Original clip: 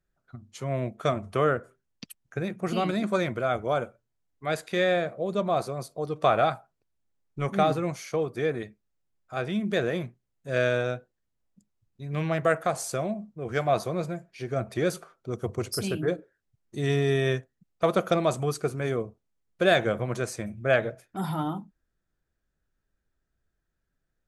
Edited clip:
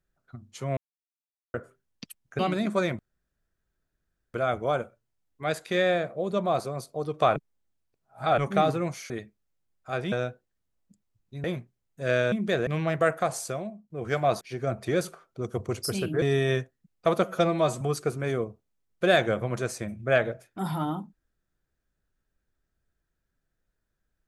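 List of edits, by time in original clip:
0:00.77–0:01.54: silence
0:02.39–0:02.76: remove
0:03.36: splice in room tone 1.35 s
0:06.38–0:07.40: reverse
0:08.12–0:08.54: remove
0:09.56–0:09.91: swap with 0:10.79–0:12.11
0:12.78–0:13.34: fade out, to −16 dB
0:13.85–0:14.30: remove
0:16.11–0:16.99: remove
0:18.01–0:18.39: time-stretch 1.5×

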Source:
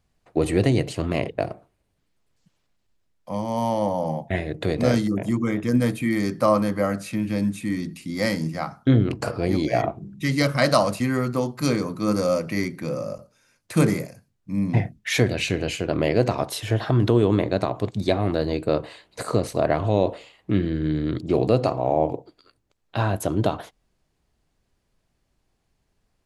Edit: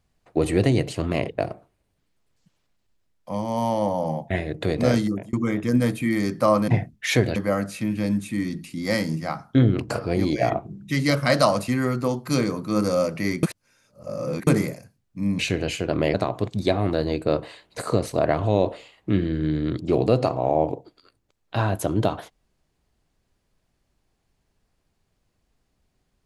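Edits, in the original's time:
0:05.07–0:05.33: fade out
0:12.75–0:13.79: reverse
0:14.71–0:15.39: move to 0:06.68
0:16.14–0:17.55: remove

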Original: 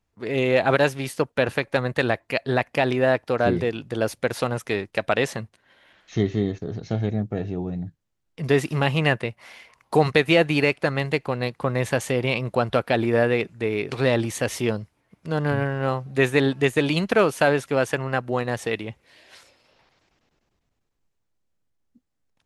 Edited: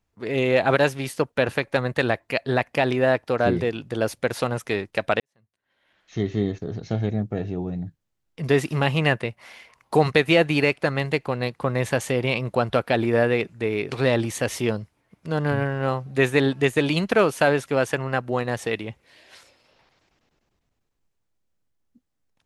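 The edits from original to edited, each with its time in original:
0:05.20–0:06.42: fade in quadratic

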